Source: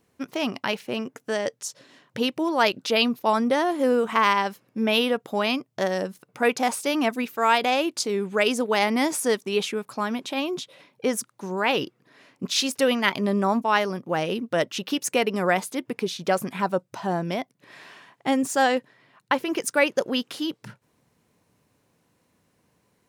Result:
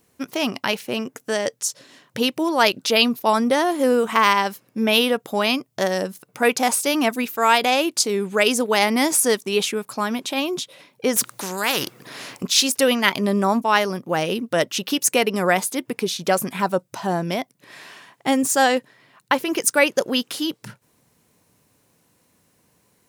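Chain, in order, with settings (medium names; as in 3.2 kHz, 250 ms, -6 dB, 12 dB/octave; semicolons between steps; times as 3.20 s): treble shelf 5.8 kHz +10 dB; 11.16–12.43 s: spectrum-flattening compressor 2:1; trim +3 dB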